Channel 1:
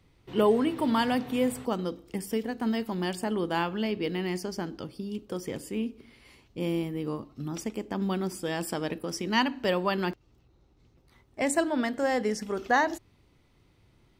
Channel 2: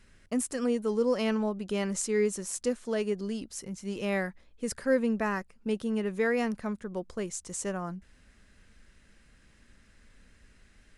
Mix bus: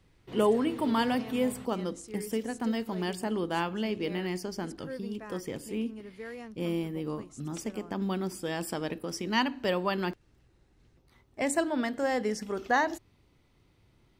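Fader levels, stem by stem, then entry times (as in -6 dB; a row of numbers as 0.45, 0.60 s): -2.0, -14.5 dB; 0.00, 0.00 s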